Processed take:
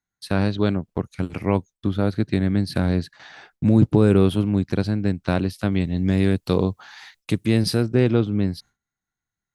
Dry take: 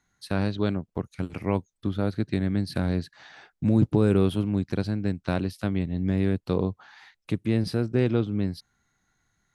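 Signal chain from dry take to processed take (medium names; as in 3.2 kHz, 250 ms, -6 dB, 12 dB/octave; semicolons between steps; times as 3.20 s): 5.72–7.83 s: treble shelf 3.6 kHz +10.5 dB; gate with hold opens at -43 dBFS; trim +5 dB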